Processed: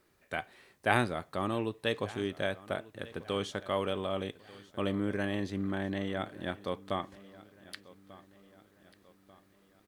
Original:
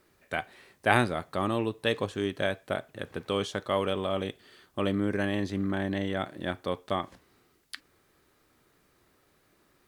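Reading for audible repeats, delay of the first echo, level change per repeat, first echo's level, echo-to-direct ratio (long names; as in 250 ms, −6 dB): 3, 1,191 ms, −6.5 dB, −20.0 dB, −19.0 dB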